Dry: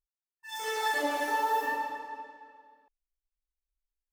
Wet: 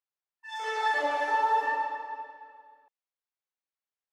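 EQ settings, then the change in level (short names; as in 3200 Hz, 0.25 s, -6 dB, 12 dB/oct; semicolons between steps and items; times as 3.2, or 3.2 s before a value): BPF 570–6500 Hz; high shelf 2900 Hz -11 dB; +5.0 dB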